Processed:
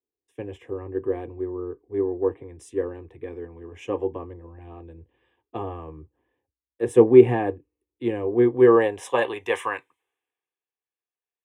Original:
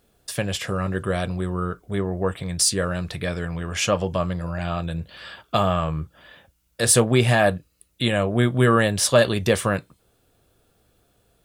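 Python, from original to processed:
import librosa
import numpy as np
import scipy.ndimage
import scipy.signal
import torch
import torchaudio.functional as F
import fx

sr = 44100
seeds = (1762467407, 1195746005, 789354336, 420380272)

y = fx.fixed_phaser(x, sr, hz=920.0, stages=8)
y = fx.filter_sweep_bandpass(y, sr, from_hz=340.0, to_hz=1500.0, start_s=8.18, end_s=10.04, q=1.3)
y = fx.band_widen(y, sr, depth_pct=70)
y = y * 10.0 ** (5.0 / 20.0)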